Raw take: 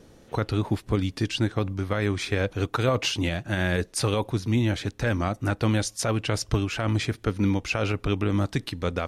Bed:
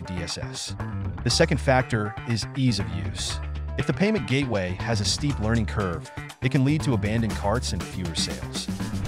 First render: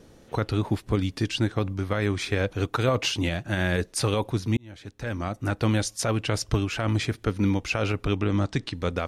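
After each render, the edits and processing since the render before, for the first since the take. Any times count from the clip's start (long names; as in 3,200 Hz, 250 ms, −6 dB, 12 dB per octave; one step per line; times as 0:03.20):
0:04.57–0:05.63: fade in
0:08.16–0:08.74: low-pass filter 7,900 Hz 24 dB per octave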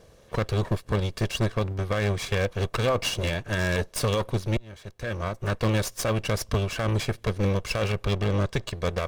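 lower of the sound and its delayed copy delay 1.8 ms
wave folding −16.5 dBFS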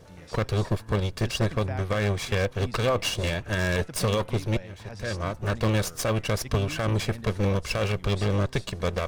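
mix in bed −17 dB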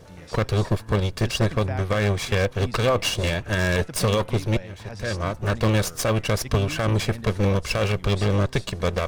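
level +3.5 dB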